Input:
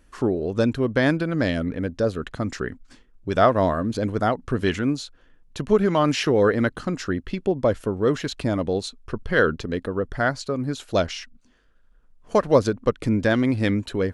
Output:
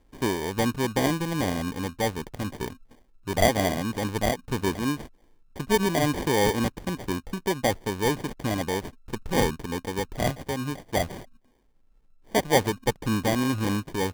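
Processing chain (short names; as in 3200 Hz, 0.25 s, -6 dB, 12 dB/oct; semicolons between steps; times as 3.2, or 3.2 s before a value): sample-and-hold 33×; gain -4 dB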